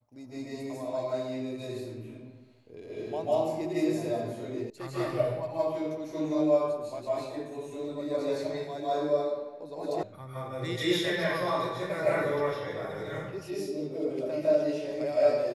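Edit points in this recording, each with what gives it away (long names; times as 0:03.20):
0:04.70: cut off before it has died away
0:10.03: cut off before it has died away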